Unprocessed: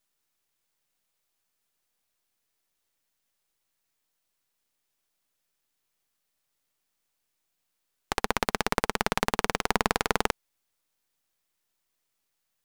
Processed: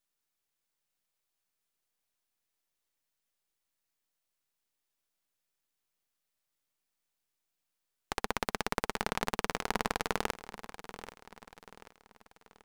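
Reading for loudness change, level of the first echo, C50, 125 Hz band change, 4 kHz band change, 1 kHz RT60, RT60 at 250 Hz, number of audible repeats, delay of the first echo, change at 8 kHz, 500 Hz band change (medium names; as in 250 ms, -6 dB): -7.0 dB, -14.0 dB, no reverb, -6.5 dB, -6.5 dB, no reverb, no reverb, 3, 785 ms, -6.5 dB, -6.5 dB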